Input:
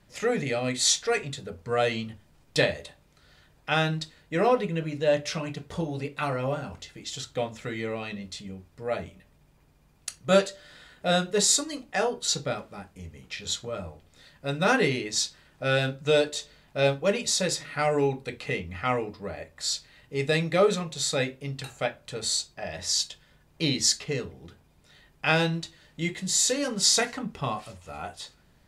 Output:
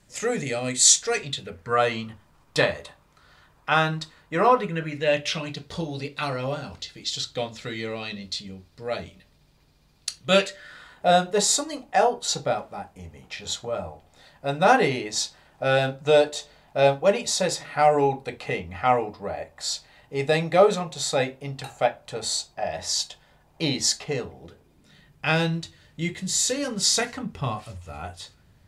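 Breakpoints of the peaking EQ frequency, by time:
peaking EQ +11 dB 0.86 oct
1.02 s 7.7 kHz
1.79 s 1.1 kHz
4.55 s 1.1 kHz
5.53 s 4.3 kHz
10.14 s 4.3 kHz
11.06 s 770 Hz
24.34 s 770 Hz
25.26 s 95 Hz

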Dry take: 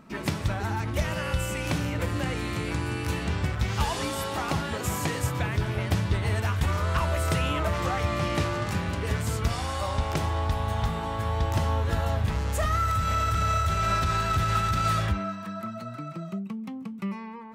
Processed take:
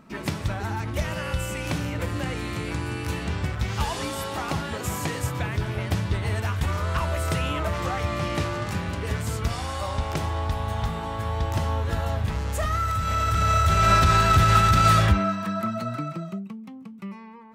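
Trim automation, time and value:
13.01 s 0 dB
13.92 s +7.5 dB
15.96 s +7.5 dB
16.63 s -4.5 dB

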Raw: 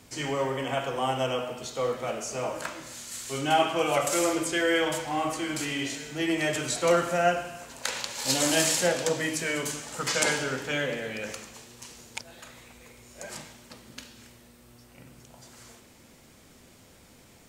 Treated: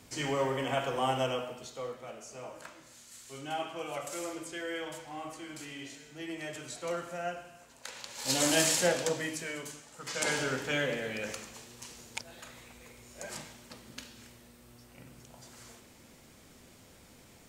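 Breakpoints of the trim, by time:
1.17 s -2 dB
2.02 s -13 dB
7.94 s -13 dB
8.39 s -2.5 dB
8.94 s -2.5 dB
9.97 s -15 dB
10.39 s -2 dB

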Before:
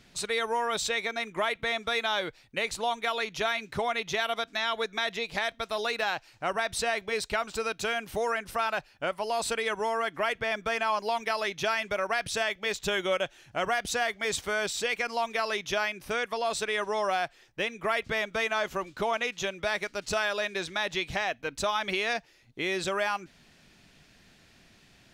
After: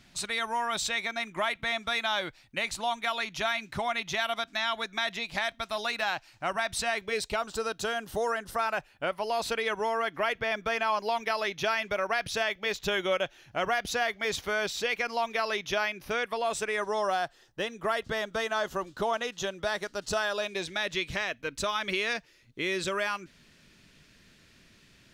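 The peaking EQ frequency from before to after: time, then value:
peaking EQ -11.5 dB 0.32 oct
6.89 s 450 Hz
7.44 s 2.3 kHz
8.48 s 2.3 kHz
9.17 s 8.2 kHz
16.17 s 8.2 kHz
16.94 s 2.3 kHz
20.34 s 2.3 kHz
20.94 s 760 Hz

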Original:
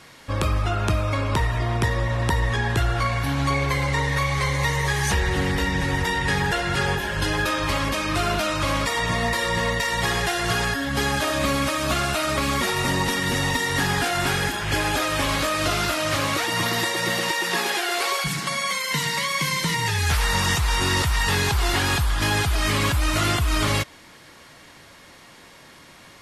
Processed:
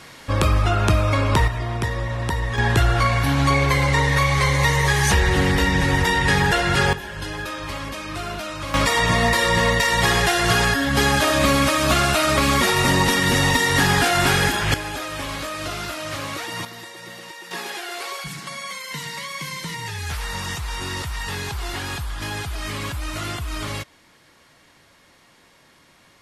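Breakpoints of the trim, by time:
+4.5 dB
from 1.48 s -2 dB
from 2.58 s +4.5 dB
from 6.93 s -6.5 dB
from 8.74 s +5 dB
from 14.74 s -6 dB
from 16.65 s -14.5 dB
from 17.51 s -7 dB

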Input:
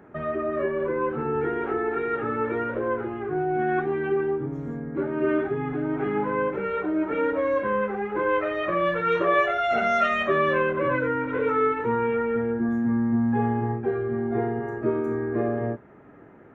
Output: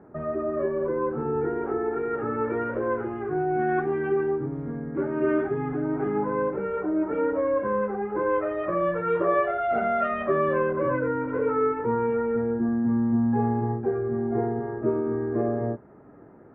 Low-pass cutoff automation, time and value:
1.95 s 1.1 kHz
2.83 s 2 kHz
5.42 s 2 kHz
6.22 s 1.2 kHz

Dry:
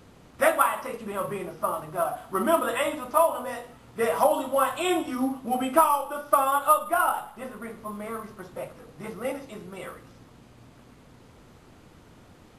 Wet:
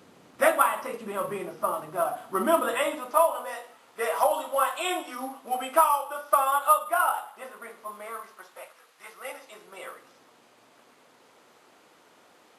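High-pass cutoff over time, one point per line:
2.63 s 200 Hz
3.48 s 570 Hz
7.97 s 570 Hz
8.94 s 1.3 kHz
9.89 s 480 Hz

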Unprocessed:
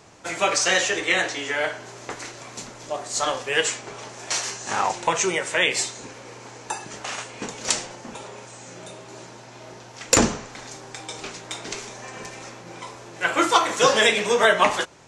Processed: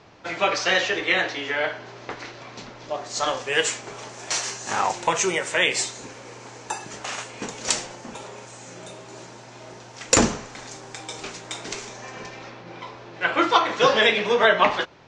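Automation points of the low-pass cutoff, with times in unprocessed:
low-pass 24 dB/octave
2.80 s 4.8 kHz
3.63 s 9.1 kHz
11.72 s 9.1 kHz
12.47 s 4.6 kHz

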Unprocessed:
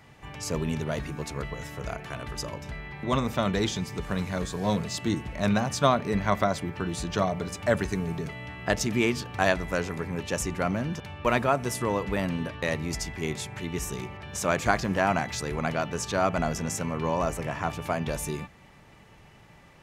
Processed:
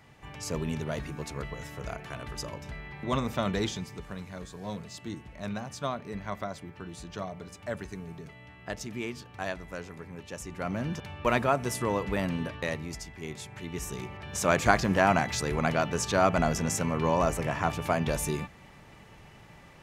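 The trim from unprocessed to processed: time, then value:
3.62 s -3 dB
4.19 s -11 dB
10.43 s -11 dB
10.86 s -1.5 dB
12.53 s -1.5 dB
13.08 s -9.5 dB
14.55 s +1.5 dB

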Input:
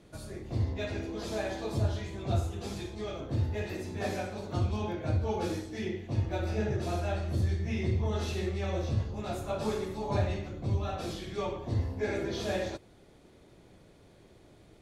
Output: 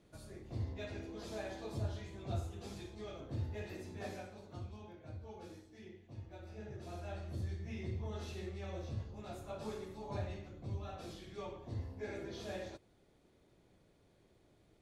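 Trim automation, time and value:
3.91 s -9.5 dB
4.85 s -19 dB
6.49 s -19 dB
7.19 s -11.5 dB

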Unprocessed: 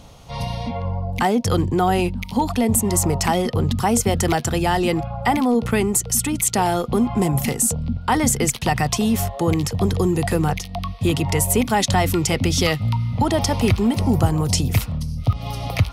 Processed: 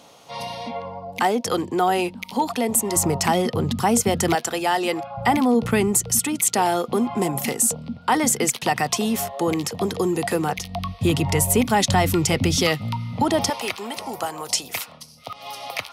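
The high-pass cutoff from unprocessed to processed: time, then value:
310 Hz
from 2.96 s 140 Hz
from 4.35 s 400 Hz
from 5.17 s 100 Hz
from 6.19 s 250 Hz
from 10.58 s 78 Hz
from 12.56 s 170 Hz
from 13.50 s 660 Hz

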